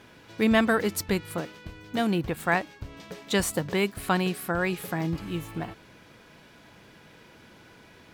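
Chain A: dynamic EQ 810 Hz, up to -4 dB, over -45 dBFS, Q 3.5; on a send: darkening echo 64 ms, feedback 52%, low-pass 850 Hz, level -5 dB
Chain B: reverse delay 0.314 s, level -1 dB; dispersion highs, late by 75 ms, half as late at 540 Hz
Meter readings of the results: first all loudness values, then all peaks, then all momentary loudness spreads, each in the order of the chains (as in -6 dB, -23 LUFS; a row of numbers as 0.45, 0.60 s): -27.0, -25.5 LUFS; -8.5, -8.5 dBFS; 16, 11 LU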